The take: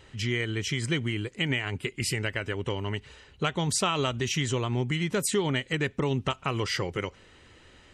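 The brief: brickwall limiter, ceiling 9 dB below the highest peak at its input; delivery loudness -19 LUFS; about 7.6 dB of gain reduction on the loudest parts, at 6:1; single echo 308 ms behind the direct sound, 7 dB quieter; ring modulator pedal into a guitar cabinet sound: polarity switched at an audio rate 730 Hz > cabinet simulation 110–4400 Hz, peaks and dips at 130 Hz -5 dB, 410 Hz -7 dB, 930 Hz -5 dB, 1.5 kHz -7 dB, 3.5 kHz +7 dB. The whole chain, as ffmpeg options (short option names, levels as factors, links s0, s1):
-af "acompressor=threshold=0.0282:ratio=6,alimiter=level_in=1.5:limit=0.0631:level=0:latency=1,volume=0.668,aecho=1:1:308:0.447,aeval=exprs='val(0)*sgn(sin(2*PI*730*n/s))':c=same,highpass=110,equalizer=f=130:t=q:w=4:g=-5,equalizer=f=410:t=q:w=4:g=-7,equalizer=f=930:t=q:w=4:g=-5,equalizer=f=1500:t=q:w=4:g=-7,equalizer=f=3500:t=q:w=4:g=7,lowpass=f=4400:w=0.5412,lowpass=f=4400:w=1.3066,volume=8.41"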